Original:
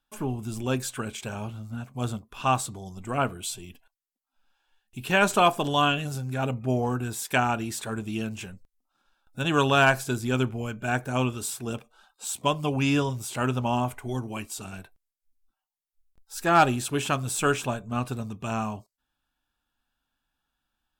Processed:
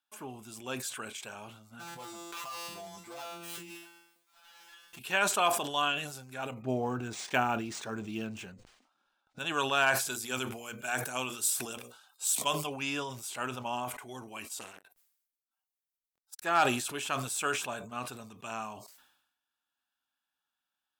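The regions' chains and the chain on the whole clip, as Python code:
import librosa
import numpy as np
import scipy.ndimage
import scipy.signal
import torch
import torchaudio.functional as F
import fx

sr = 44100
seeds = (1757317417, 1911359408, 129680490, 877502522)

y = fx.chain(x, sr, fx.dead_time(dead_ms=0.14),
    fx.comb_fb(f0_hz=170.0, decay_s=0.46, harmonics='all', damping=0.0, mix_pct=100),
    fx.env_flatten(amount_pct=100), at=(1.79, 4.99))
y = fx.chain(y, sr, fx.low_shelf(hz=490.0, db=11.5),
    fx.resample_linear(factor=3), at=(6.62, 9.39))
y = fx.chain(y, sr, fx.high_shelf(hz=4500.0, db=10.0),
    fx.hum_notches(base_hz=60, count=9), at=(10.08, 12.67))
y = fx.chain(y, sr, fx.high_shelf(hz=9800.0, db=6.0),
    fx.transformer_sat(knee_hz=2100.0), at=(14.58, 16.42))
y = fx.highpass(y, sr, hz=860.0, slope=6)
y = fx.sustainer(y, sr, db_per_s=68.0)
y = y * 10.0 ** (-4.5 / 20.0)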